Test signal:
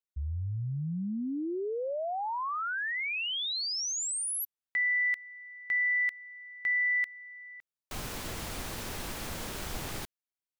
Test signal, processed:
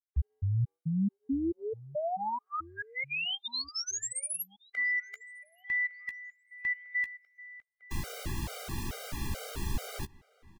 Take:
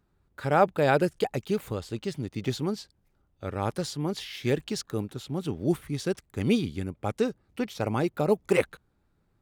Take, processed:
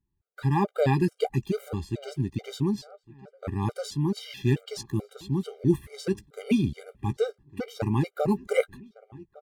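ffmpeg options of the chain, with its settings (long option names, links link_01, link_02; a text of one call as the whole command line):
ffmpeg -i in.wav -filter_complex "[0:a]agate=range=-15dB:threshold=-54dB:ratio=16:release=86:detection=rms,lowshelf=frequency=230:gain=8.5,asplit=2[link_01][link_02];[link_02]adelay=15,volume=-12dB[link_03];[link_01][link_03]amix=inputs=2:normalize=0,asplit=2[link_04][link_05];[link_05]adelay=1158,lowpass=frequency=2300:poles=1,volume=-22dB,asplit=2[link_06][link_07];[link_07]adelay=1158,lowpass=frequency=2300:poles=1,volume=0.46,asplit=2[link_08][link_09];[link_09]adelay=1158,lowpass=frequency=2300:poles=1,volume=0.46[link_10];[link_06][link_08][link_10]amix=inputs=3:normalize=0[link_11];[link_04][link_11]amix=inputs=2:normalize=0,afftfilt=real='re*gt(sin(2*PI*2.3*pts/sr)*(1-2*mod(floor(b*sr/1024/400),2)),0)':imag='im*gt(sin(2*PI*2.3*pts/sr)*(1-2*mod(floor(b*sr/1024/400),2)),0)':win_size=1024:overlap=0.75" out.wav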